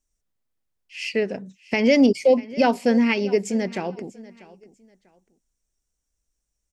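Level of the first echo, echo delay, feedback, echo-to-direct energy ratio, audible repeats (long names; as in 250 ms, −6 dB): −20.0 dB, 643 ms, 27%, −19.5 dB, 2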